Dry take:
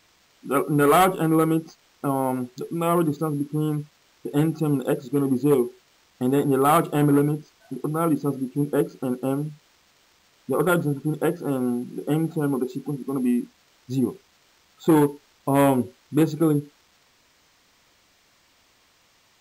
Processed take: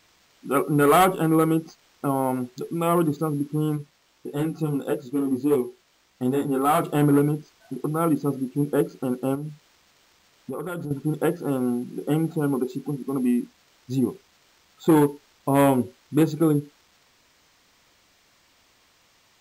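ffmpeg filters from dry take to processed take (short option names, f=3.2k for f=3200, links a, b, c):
-filter_complex "[0:a]asplit=3[a][b][c];[a]afade=t=out:st=3.76:d=0.02[d];[b]flanger=delay=15.5:depth=3.5:speed=1.6,afade=t=in:st=3.76:d=0.02,afade=t=out:st=6.8:d=0.02[e];[c]afade=t=in:st=6.8:d=0.02[f];[d][e][f]amix=inputs=3:normalize=0,asettb=1/sr,asplit=3[g][h][i];[g]atrim=end=9.354[j];[h]atrim=start=9.35:end=10.91,asetpts=PTS-STARTPTS,afade=t=in:d=0.004:c=qsin,afade=t=out:st=1.556:d=0.004:c=qsin,acompressor=threshold=-28dB:ratio=6:attack=3.2:release=140:knee=1:detection=peak[k];[i]atrim=start=10.906[l];[j][k]acrossfade=d=0.004:c1=hsin:c2=qsin[m];[m][l]acrossfade=d=0.004:c1=qsin:c2=hsin"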